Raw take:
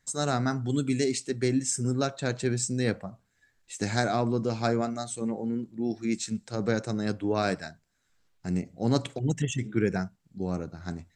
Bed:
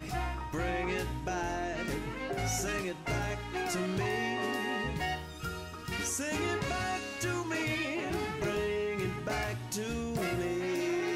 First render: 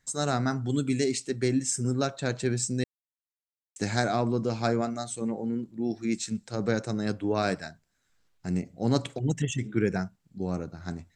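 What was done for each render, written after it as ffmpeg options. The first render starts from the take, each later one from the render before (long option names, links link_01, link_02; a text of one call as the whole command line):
ffmpeg -i in.wav -filter_complex "[0:a]asplit=3[link_01][link_02][link_03];[link_01]atrim=end=2.84,asetpts=PTS-STARTPTS,afade=type=out:start_time=2.836:duration=0.004:curve=hsin[link_04];[link_02]atrim=start=2.84:end=3.76,asetpts=PTS-STARTPTS,volume=0[link_05];[link_03]atrim=start=3.76,asetpts=PTS-STARTPTS,afade=type=in:duration=0.004:curve=hsin[link_06];[link_04][link_05][link_06]concat=n=3:v=0:a=1" out.wav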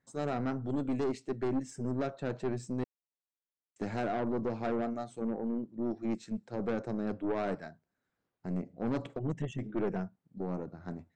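ffmpeg -i in.wav -af "bandpass=frequency=400:width_type=q:width=0.53:csg=0,aeval=exprs='(tanh(22.4*val(0)+0.4)-tanh(0.4))/22.4':channel_layout=same" out.wav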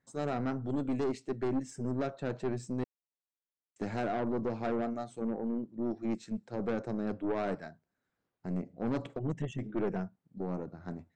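ffmpeg -i in.wav -af anull out.wav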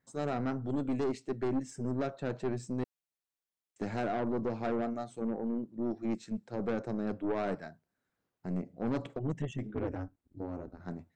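ffmpeg -i in.wav -filter_complex "[0:a]asettb=1/sr,asplit=3[link_01][link_02][link_03];[link_01]atrim=end=9.744[link_04];[link_02]atrim=start=9.74:end=10.8,asetpts=PTS-STARTPTS,afade=type=in:duration=0.004:curve=qsin,afade=type=out:start_time=1.056:duration=0.004:curve=qsin,aeval=exprs='val(0)*sin(2*PI*90*n/s)':channel_layout=same[link_05];[link_03]atrim=start=10.796[link_06];[link_04][link_05]acrossfade=duration=0.004:curve1=hsin:curve2=qsin[link_07];[link_07][link_06]acrossfade=duration=0.004:curve1=qsin:curve2=hsin" out.wav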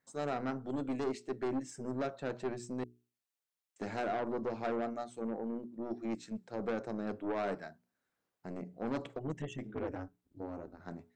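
ffmpeg -i in.wav -af "lowshelf=frequency=230:gain=-8,bandreject=frequency=60:width_type=h:width=6,bandreject=frequency=120:width_type=h:width=6,bandreject=frequency=180:width_type=h:width=6,bandreject=frequency=240:width_type=h:width=6,bandreject=frequency=300:width_type=h:width=6,bandreject=frequency=360:width_type=h:width=6,bandreject=frequency=420:width_type=h:width=6" out.wav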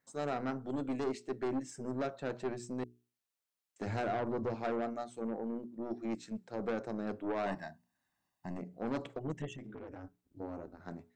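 ffmpeg -i in.wav -filter_complex "[0:a]asettb=1/sr,asplit=3[link_01][link_02][link_03];[link_01]atrim=end=3.864[link_04];[link_02]atrim=start=3.86:end=4.55,asetpts=PTS-STARTPTS,afade=type=in:duration=0.004:curve=qsin,afade=type=out:start_time=0.686:duration=0.004:curve=qsin,equalizer=frequency=96:width_type=o:width=0.77:gain=14.5[link_05];[link_03]atrim=start=4.546[link_06];[link_04][link_05]acrossfade=duration=0.004:curve1=hsin:curve2=qsin[link_07];[link_07][link_06]acrossfade=duration=0.004:curve1=qsin:curve2=hsin,asettb=1/sr,asplit=3[link_08][link_09][link_10];[link_08]atrim=end=7.464[link_11];[link_09]atrim=start=7.46:end=8.58,asetpts=PTS-STARTPTS,afade=type=in:duration=0.004:curve=qsin,afade=type=out:start_time=1.116:duration=0.004:curve=qsin,aecho=1:1:1.1:0.84,atrim=end_sample=49392[link_12];[link_10]atrim=start=8.576[link_13];[link_11][link_12]acrossfade=duration=0.004:curve1=hsin:curve2=qsin[link_14];[link_14][link_13]acrossfade=duration=0.004:curve1=qsin:curve2=hsin,asplit=3[link_15][link_16][link_17];[link_15]afade=type=out:start_time=9.52:duration=0.02[link_18];[link_16]acompressor=threshold=-43dB:ratio=6:attack=3.2:release=140:knee=1:detection=peak,afade=type=in:start_time=9.52:duration=0.02,afade=type=out:start_time=10.03:duration=0.02[link_19];[link_17]afade=type=in:start_time=10.03:duration=0.02[link_20];[link_18][link_19][link_20]amix=inputs=3:normalize=0" out.wav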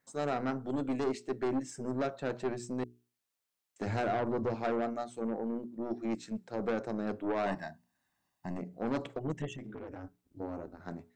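ffmpeg -i in.wav -af "volume=3dB" out.wav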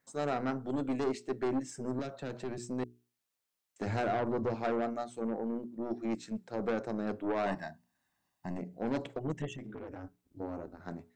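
ffmpeg -i in.wav -filter_complex "[0:a]asettb=1/sr,asplit=3[link_01][link_02][link_03];[link_01]atrim=end=1.994[link_04];[link_02]atrim=start=1.99:end=2.58,asetpts=PTS-STARTPTS,afade=type=in:duration=0.004:curve=qsin,afade=type=out:start_time=0.586:duration=0.004:curve=qsin,acrossover=split=250|3000[link_05][link_06][link_07];[link_06]acompressor=threshold=-38dB:ratio=6:attack=3.2:release=140:knee=2.83:detection=peak[link_08];[link_05][link_08][link_07]amix=inputs=3:normalize=0[link_09];[link_03]atrim=start=2.576[link_10];[link_04][link_09]acrossfade=duration=0.004:curve1=hsin:curve2=qsin[link_11];[link_11][link_10]acrossfade=duration=0.004:curve1=qsin:curve2=hsin,asettb=1/sr,asplit=3[link_12][link_13][link_14];[link_12]atrim=end=8.554[link_15];[link_13]atrim=start=8.55:end=9.16,asetpts=PTS-STARTPTS,afade=type=in:duration=0.004:curve=qsin,afade=type=out:start_time=0.606:duration=0.004:curve=qsin,equalizer=frequency=1200:width_type=o:width=0.21:gain=-10.5[link_16];[link_14]atrim=start=9.156[link_17];[link_15][link_16]acrossfade=duration=0.004:curve1=hsin:curve2=qsin[link_18];[link_18][link_17]acrossfade=duration=0.004:curve1=qsin:curve2=hsin" out.wav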